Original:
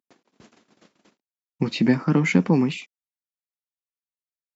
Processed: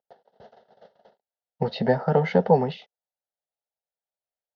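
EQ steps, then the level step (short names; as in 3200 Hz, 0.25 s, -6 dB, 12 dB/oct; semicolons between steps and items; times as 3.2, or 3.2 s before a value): air absorption 140 m; band shelf 630 Hz +12.5 dB; fixed phaser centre 1600 Hz, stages 8; 0.0 dB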